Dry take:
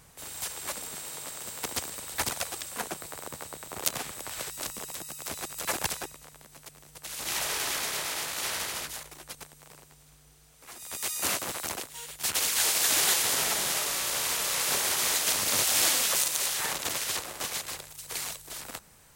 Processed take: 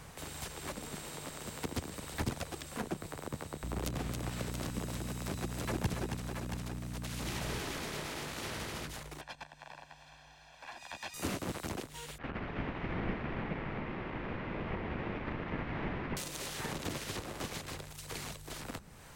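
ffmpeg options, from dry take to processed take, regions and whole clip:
ffmpeg -i in.wav -filter_complex "[0:a]asettb=1/sr,asplit=3[link_01][link_02][link_03];[link_01]atrim=end=3.634[link_04];[link_02]atrim=start=3.63:end=7.6,asetpts=PTS-STARTPTS,afade=type=in:duration=0.004:curve=qsin,afade=type=out:start_time=3.966:duration=0.004:curve=qsin,aeval=exprs='val(0)+0.00562*(sin(2*PI*60*n/s)+sin(2*PI*2*60*n/s)/2+sin(2*PI*3*60*n/s)/3+sin(2*PI*4*60*n/s)/4+sin(2*PI*5*60*n/s)/5)':channel_layout=same,acrusher=bits=6:mode=log:mix=0:aa=0.000001,aecho=1:1:274|678:0.398|0.282,atrim=end_sample=175077[link_05];[link_03]atrim=start=7.596[link_06];[link_04][link_05]acrossfade=duration=0.004:curve1=hsin:curve2=qsin[link_07];[link_07][link_06]acrossfade=duration=0.004:curve1=qsin:curve2=hsin,asettb=1/sr,asplit=3[link_08][link_09][link_10];[link_08]atrim=end=9.214[link_11];[link_09]atrim=start=9.21:end=11.14,asetpts=PTS-STARTPTS,afade=type=in:duration=0.004:curve=qsin,afade=type=out:start_time=1.926:duration=0.004:curve=qsin,acrossover=split=380 5100:gain=0.158 1 0.1[link_12][link_13][link_14];[link_12][link_13][link_14]amix=inputs=3:normalize=0,aecho=1:1:1.2:0.83,atrim=end_sample=85113[link_15];[link_10]atrim=start=11.136[link_16];[link_11][link_15]acrossfade=duration=0.004:curve1=hsin:curve2=qsin[link_17];[link_17][link_16]acrossfade=duration=0.004:curve1=qsin:curve2=hsin,asettb=1/sr,asplit=3[link_18][link_19][link_20];[link_18]atrim=end=12.184[link_21];[link_19]atrim=start=12.18:end=16.17,asetpts=PTS-STARTPTS,afade=type=in:duration=0.004:curve=qsin,afade=type=out:start_time=3.986:duration=0.004:curve=qsin,aeval=exprs='val(0)*sin(2*PI*1500*n/s)':channel_layout=same,lowpass=frequency=2200:width=0.5412,lowpass=frequency=2200:width=1.3066[link_22];[link_20]atrim=start=16.166[link_23];[link_21][link_22]acrossfade=duration=0.004:curve1=hsin:curve2=qsin[link_24];[link_24][link_23]acrossfade=duration=0.004:curve1=qsin:curve2=hsin,highshelf=frequency=5600:gain=-11.5,acrossover=split=350[link_25][link_26];[link_26]acompressor=threshold=-55dB:ratio=2.5[link_27];[link_25][link_27]amix=inputs=2:normalize=0,volume=7.5dB" out.wav

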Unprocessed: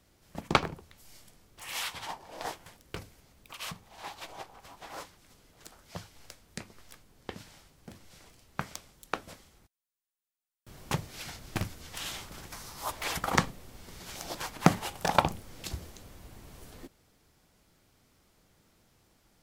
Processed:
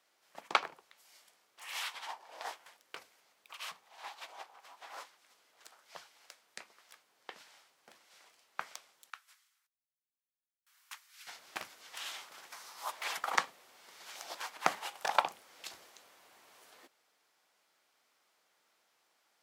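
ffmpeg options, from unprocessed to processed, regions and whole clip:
ffmpeg -i in.wav -filter_complex "[0:a]asettb=1/sr,asplit=3[link_01][link_02][link_03];[link_01]atrim=end=9.104[link_04];[link_02]atrim=start=9.1:end=11.27,asetpts=PTS-STARTPTS,afade=type=in:duration=0.004:curve=qsin,afade=type=out:start_time=2.166:duration=0.004:curve=qsin,highpass=frequency=1300:width=0.5412,highpass=frequency=1300:width=1.3066,equalizer=frequency=2600:width=0.31:gain=-8.5[link_05];[link_03]atrim=start=11.266[link_06];[link_04][link_05]acrossfade=duration=0.004:curve1=hsin:curve2=qsin[link_07];[link_07][link_06]acrossfade=duration=0.004:curve1=qsin:curve2=hsin,highpass=760,highshelf=frequency=5700:gain=-7,volume=-2dB" out.wav

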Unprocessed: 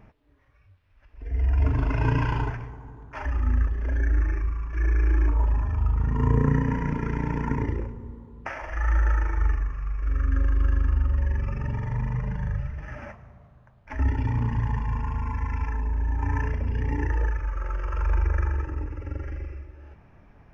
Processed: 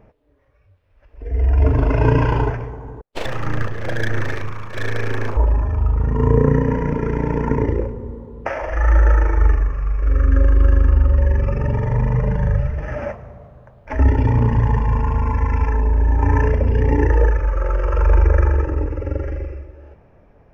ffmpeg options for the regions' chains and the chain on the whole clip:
ffmpeg -i in.wav -filter_complex "[0:a]asettb=1/sr,asplit=3[link_01][link_02][link_03];[link_01]atrim=end=3.014[link_04];[link_02]atrim=start=3.01:end=5.37,asetpts=PTS-STARTPTS,afade=type=in:duration=0.004:curve=qsin,afade=type=out:start_time=2.356:duration=0.004:curve=qsin,agate=range=-46dB:threshold=-37dB:ratio=16:release=100:detection=peak,tiltshelf=frequency=720:gain=-7.5,aeval=exprs='abs(val(0))':channel_layout=same[link_05];[link_03]atrim=start=5.366[link_06];[link_04][link_05]acrossfade=duration=0.004:curve1=hsin:curve2=qsin[link_07];[link_07][link_06]acrossfade=duration=0.004:curve1=qsin:curve2=hsin,lowshelf=frequency=190:gain=3.5,dynaudnorm=framelen=110:gausssize=21:maxgain=11.5dB,equalizer=frequency=510:width=1.4:gain=12.5,volume=-2.5dB" out.wav

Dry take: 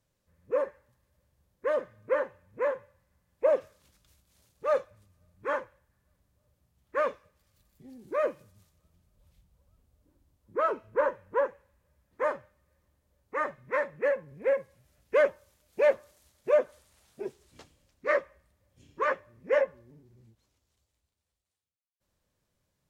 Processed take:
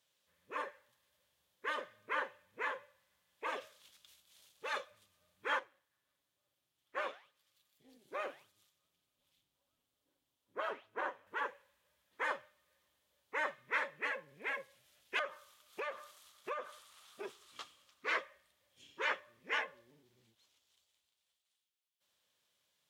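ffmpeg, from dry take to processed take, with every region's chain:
ffmpeg -i in.wav -filter_complex "[0:a]asettb=1/sr,asplit=3[link_01][link_02][link_03];[link_01]atrim=end=5.594[link_04];[link_02]atrim=start=5.59:end=11.27,asetpts=PTS-STARTPTS,afade=type=in:duration=0.004:curve=qsin,afade=type=out:start_time=5.676:duration=0.004:curve=qsin,aecho=1:1:7.3:0.39,atrim=end_sample=250488,flanger=delay=1.6:depth=8.9:regen=-90:speed=1.7:shape=triangular,tremolo=f=210:d=0.571[link_05];[link_03]atrim=start=11.266[link_06];[link_04][link_05]acrossfade=duration=0.004:curve1=hsin:curve2=qsin[link_07];[link_07][link_06]acrossfade=duration=0.004:curve1=qsin:curve2=hsin,asettb=1/sr,asplit=3[link_08][link_09][link_10];[link_08]atrim=end=15.194[link_11];[link_09]atrim=start=15.19:end=18.07,asetpts=PTS-STARTPTS,afade=type=in:duration=0.004:curve=qsin,afade=type=out:start_time=2.876:duration=0.004:curve=qsin,equalizer=frequency=1200:width_type=o:width=0.44:gain=14,acompressor=threshold=-31dB:ratio=10:attack=3.2:release=140:knee=1:detection=peak[link_12];[link_10]atrim=start=18.066[link_13];[link_11][link_12]acrossfade=duration=0.004:curve1=hsin:curve2=qsin[link_14];[link_14][link_13]acrossfade=duration=0.004:curve1=qsin:curve2=hsin,highpass=frequency=1100:poles=1,afftfilt=real='re*lt(hypot(re,im),0.126)':imag='im*lt(hypot(re,im),0.126)':win_size=1024:overlap=0.75,equalizer=frequency=3300:width_type=o:width=0.65:gain=9.5,volume=1.5dB" out.wav

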